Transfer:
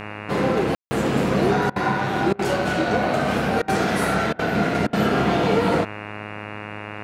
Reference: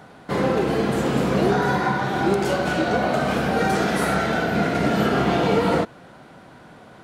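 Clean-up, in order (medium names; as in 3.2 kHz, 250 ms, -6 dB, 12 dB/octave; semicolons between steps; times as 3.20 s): de-hum 104.8 Hz, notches 27; room tone fill 0.75–0.91 s; interpolate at 1.70/2.33/3.62/4.33/4.87 s, 59 ms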